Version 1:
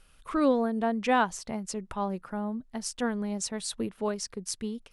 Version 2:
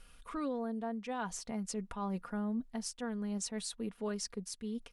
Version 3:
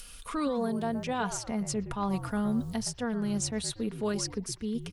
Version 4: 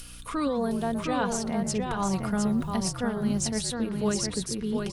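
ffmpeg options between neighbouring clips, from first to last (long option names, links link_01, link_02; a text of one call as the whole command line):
ffmpeg -i in.wav -af "aecho=1:1:4.2:0.46,areverse,acompressor=threshold=-33dB:ratio=5,areverse,alimiter=level_in=4.5dB:limit=-24dB:level=0:latency=1:release=459,volume=-4.5dB" out.wav
ffmpeg -i in.wav -filter_complex "[0:a]acrossover=split=3300[link_01][link_02];[link_01]asplit=5[link_03][link_04][link_05][link_06][link_07];[link_04]adelay=118,afreqshift=-61,volume=-10dB[link_08];[link_05]adelay=236,afreqshift=-122,volume=-18.6dB[link_09];[link_06]adelay=354,afreqshift=-183,volume=-27.3dB[link_10];[link_07]adelay=472,afreqshift=-244,volume=-35.9dB[link_11];[link_03][link_08][link_09][link_10][link_11]amix=inputs=5:normalize=0[link_12];[link_02]acompressor=mode=upward:threshold=-46dB:ratio=2.5[link_13];[link_12][link_13]amix=inputs=2:normalize=0,volume=6.5dB" out.wav
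ffmpeg -i in.wav -af "aeval=exprs='val(0)+0.00282*(sin(2*PI*60*n/s)+sin(2*PI*2*60*n/s)/2+sin(2*PI*3*60*n/s)/3+sin(2*PI*4*60*n/s)/4+sin(2*PI*5*60*n/s)/5)':channel_layout=same,aecho=1:1:711:0.596,volume=2.5dB" out.wav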